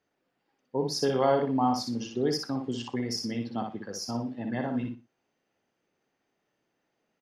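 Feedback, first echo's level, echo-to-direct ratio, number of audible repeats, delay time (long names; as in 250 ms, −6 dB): 22%, −5.0 dB, −5.0 dB, 3, 60 ms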